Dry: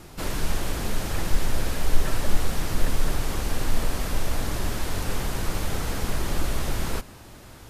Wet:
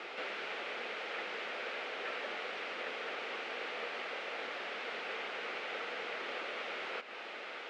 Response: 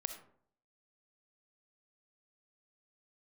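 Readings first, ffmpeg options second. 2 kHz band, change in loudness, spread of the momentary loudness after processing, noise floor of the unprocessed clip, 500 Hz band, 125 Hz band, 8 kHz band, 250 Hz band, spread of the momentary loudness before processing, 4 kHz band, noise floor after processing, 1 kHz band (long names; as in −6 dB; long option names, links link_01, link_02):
−2.0 dB, −10.0 dB, 1 LU, −45 dBFS, −7.0 dB, below −40 dB, −27.0 dB, −20.0 dB, 2 LU, −7.0 dB, −46 dBFS, −7.0 dB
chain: -af "aderivative,acompressor=threshold=-46dB:ratio=6,aeval=exprs='0.0133*sin(PI/2*2*val(0)/0.0133)':channel_layout=same,highpass=frequency=260:width=0.5412,highpass=frequency=260:width=1.3066,equalizer=frequency=300:width_type=q:width=4:gain=-7,equalizer=frequency=470:width_type=q:width=4:gain=6,equalizer=frequency=1000:width_type=q:width=4:gain=-8,equalizer=frequency=1700:width_type=q:width=4:gain=-5,lowpass=frequency=2400:width=0.5412,lowpass=frequency=2400:width=1.3066,volume=15.5dB"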